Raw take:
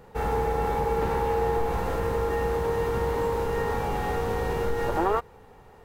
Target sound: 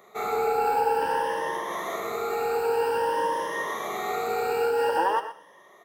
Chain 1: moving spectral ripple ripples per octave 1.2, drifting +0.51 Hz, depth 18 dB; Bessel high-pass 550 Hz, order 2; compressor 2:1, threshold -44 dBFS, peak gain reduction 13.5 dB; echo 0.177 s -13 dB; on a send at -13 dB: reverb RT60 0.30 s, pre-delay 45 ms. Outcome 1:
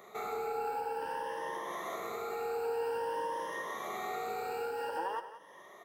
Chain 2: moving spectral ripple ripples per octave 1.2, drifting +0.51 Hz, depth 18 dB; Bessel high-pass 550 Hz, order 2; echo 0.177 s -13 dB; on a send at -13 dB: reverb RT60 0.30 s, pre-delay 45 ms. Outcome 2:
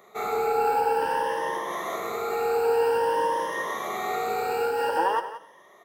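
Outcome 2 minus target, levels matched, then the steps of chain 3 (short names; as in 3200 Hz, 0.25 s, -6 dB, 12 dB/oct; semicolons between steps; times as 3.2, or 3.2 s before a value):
echo 57 ms late
moving spectral ripple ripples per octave 1.2, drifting +0.51 Hz, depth 18 dB; Bessel high-pass 550 Hz, order 2; echo 0.12 s -13 dB; on a send at -13 dB: reverb RT60 0.30 s, pre-delay 45 ms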